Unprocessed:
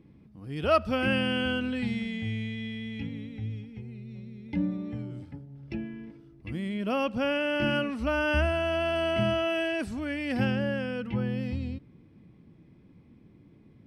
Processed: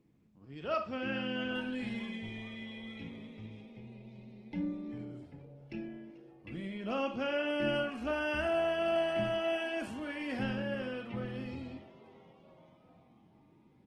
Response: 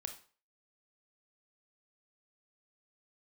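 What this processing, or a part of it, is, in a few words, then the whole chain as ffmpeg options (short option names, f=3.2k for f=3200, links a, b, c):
far-field microphone of a smart speaker: -filter_complex "[0:a]lowshelf=f=110:g=-5.5,asettb=1/sr,asplit=3[a][b][c];[a]atrim=end=6.504[d];[b]atrim=start=6.5:end=7.48,asetpts=PTS-STARTPTS,afade=t=in:d=0.004:c=qsin,afade=t=out:st=0.976:d=0.004:c=qsin,lowpass=7.4k[e];[c]atrim=start=7.476[f];[d][e]acrossfade=d=0.004:c1=hsin:c2=qsin[g];[g][f]acrossfade=d=0.004:c1=qsin:c2=hsin,asplit=6[h][i][j][k][l][m];[i]adelay=437,afreqshift=140,volume=-20dB[n];[j]adelay=874,afreqshift=280,volume=-24.7dB[o];[k]adelay=1311,afreqshift=420,volume=-29.5dB[p];[l]adelay=1748,afreqshift=560,volume=-34.2dB[q];[m]adelay=2185,afreqshift=700,volume=-38.9dB[r];[h][n][o][p][q][r]amix=inputs=6:normalize=0[s];[1:a]atrim=start_sample=2205[t];[s][t]afir=irnorm=-1:irlink=0,highpass=100,dynaudnorm=f=210:g=13:m=4dB,volume=-7.5dB" -ar 48000 -c:a libopus -b:a 16k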